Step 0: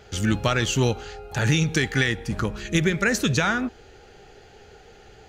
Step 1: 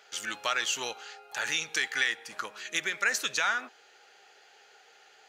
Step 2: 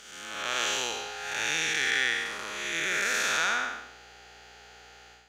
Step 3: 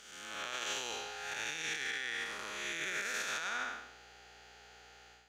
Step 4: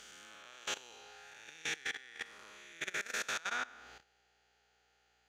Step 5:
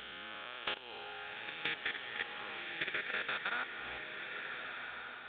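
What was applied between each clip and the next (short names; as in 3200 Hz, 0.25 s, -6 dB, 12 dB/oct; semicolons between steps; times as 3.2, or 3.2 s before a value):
HPF 910 Hz 12 dB/oct; gain -3 dB
time blur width 0.33 s; hum 60 Hz, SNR 32 dB; AGC gain up to 8 dB
limiter -21.5 dBFS, peak gain reduction 9 dB; gain -6 dB
level quantiser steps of 19 dB; gain +2 dB
downsampling 8000 Hz; compressor, threshold -44 dBFS, peak gain reduction 10 dB; bloom reverb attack 1.48 s, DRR 4 dB; gain +9 dB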